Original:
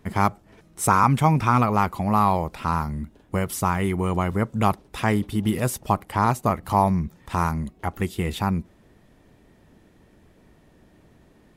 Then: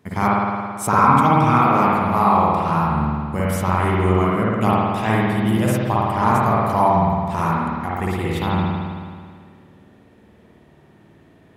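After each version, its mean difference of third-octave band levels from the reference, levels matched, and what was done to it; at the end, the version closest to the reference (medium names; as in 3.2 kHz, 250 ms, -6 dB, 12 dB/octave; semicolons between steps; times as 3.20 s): 8.5 dB: high-pass 83 Hz; spring tank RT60 1.9 s, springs 54 ms, chirp 30 ms, DRR -6.5 dB; trim -2 dB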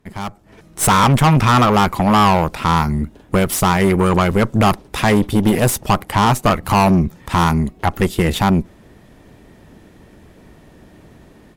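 4.0 dB: valve stage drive 23 dB, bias 0.8; level rider gain up to 15.5 dB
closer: second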